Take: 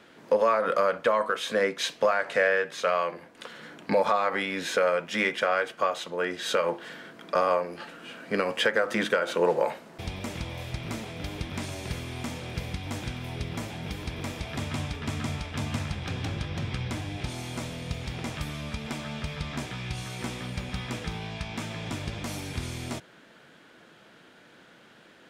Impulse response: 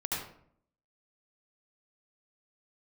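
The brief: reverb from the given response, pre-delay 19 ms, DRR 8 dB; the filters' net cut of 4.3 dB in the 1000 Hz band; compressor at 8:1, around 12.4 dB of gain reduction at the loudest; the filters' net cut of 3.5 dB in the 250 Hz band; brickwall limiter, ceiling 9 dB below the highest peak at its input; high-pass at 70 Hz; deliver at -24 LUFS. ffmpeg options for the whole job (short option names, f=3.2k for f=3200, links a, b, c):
-filter_complex "[0:a]highpass=70,equalizer=f=250:t=o:g=-4.5,equalizer=f=1k:t=o:g=-5.5,acompressor=threshold=-34dB:ratio=8,alimiter=level_in=4.5dB:limit=-24dB:level=0:latency=1,volume=-4.5dB,asplit=2[a][b];[1:a]atrim=start_sample=2205,adelay=19[c];[b][c]afir=irnorm=-1:irlink=0,volume=-13dB[d];[a][d]amix=inputs=2:normalize=0,volume=15dB"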